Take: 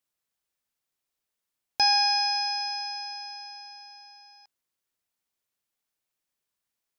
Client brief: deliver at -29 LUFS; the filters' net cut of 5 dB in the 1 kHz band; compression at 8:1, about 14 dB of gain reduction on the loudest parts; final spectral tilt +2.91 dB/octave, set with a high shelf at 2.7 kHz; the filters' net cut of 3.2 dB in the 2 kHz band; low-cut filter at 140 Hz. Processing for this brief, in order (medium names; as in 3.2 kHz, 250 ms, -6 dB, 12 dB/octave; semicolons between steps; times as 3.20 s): high-pass 140 Hz; peaking EQ 1 kHz -6.5 dB; peaking EQ 2 kHz -4 dB; treble shelf 2.7 kHz +3.5 dB; compression 8:1, threshold -33 dBFS; trim +5.5 dB